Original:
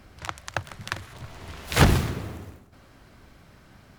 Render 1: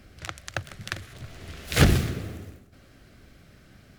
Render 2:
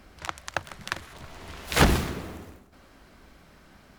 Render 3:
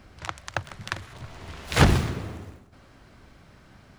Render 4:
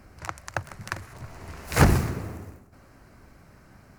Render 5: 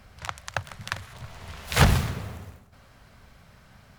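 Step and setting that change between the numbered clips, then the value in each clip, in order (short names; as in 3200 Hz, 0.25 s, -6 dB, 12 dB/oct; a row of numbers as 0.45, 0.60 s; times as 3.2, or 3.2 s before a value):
bell, frequency: 950, 110, 15000, 3400, 320 Hz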